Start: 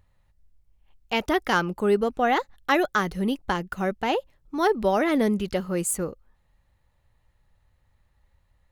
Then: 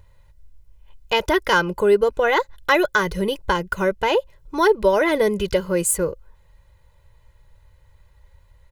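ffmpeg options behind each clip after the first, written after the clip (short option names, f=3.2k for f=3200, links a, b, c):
-filter_complex "[0:a]aecho=1:1:2:0.84,asplit=2[a][b];[b]acompressor=threshold=-29dB:ratio=6,volume=3dB[c];[a][c]amix=inputs=2:normalize=0"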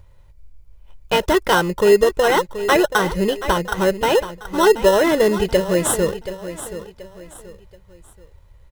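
-filter_complex "[0:a]aecho=1:1:729|1458|2187:0.237|0.0806|0.0274,asplit=2[a][b];[b]acrusher=samples=19:mix=1:aa=0.000001,volume=-3dB[c];[a][c]amix=inputs=2:normalize=0,volume=-1dB"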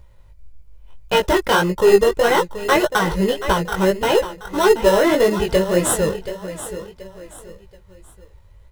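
-filter_complex "[0:a]asplit=2[a][b];[b]aeval=exprs='clip(val(0),-1,0.188)':c=same,volume=-3dB[c];[a][c]amix=inputs=2:normalize=0,flanger=delay=15.5:depth=5.8:speed=1.7,volume=-1dB"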